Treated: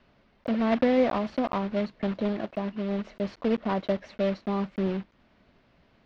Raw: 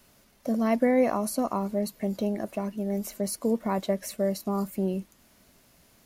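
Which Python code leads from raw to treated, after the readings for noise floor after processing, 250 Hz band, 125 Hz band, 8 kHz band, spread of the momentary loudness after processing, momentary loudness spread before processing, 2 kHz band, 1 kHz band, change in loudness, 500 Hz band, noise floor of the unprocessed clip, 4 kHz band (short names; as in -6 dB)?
-64 dBFS, 0.0 dB, 0.0 dB, under -20 dB, 8 LU, 8 LU, +2.5 dB, 0.0 dB, 0.0 dB, 0.0 dB, -61 dBFS, +1.5 dB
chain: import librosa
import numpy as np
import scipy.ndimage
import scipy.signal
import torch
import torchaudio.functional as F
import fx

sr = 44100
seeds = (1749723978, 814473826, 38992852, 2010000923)

y = fx.block_float(x, sr, bits=3)
y = scipy.signal.sosfilt(scipy.signal.bessel(6, 2600.0, 'lowpass', norm='mag', fs=sr, output='sos'), y)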